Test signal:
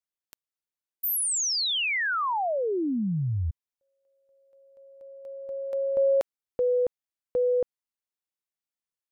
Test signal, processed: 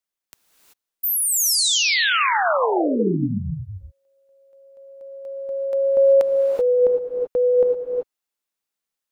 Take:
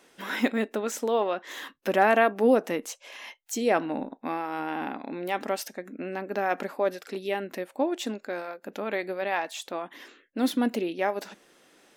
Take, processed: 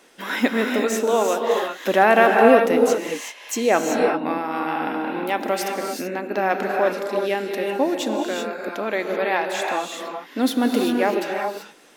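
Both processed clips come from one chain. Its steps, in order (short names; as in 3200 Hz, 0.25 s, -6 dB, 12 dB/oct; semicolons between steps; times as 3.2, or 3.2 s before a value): bell 99 Hz -10 dB 0.85 oct; non-linear reverb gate 0.41 s rising, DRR 1.5 dB; gain +5.5 dB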